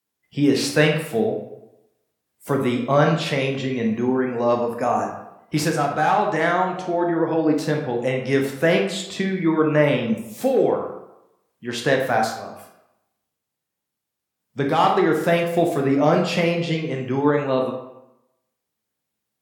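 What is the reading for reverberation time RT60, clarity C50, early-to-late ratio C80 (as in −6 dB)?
0.90 s, 5.0 dB, 8.5 dB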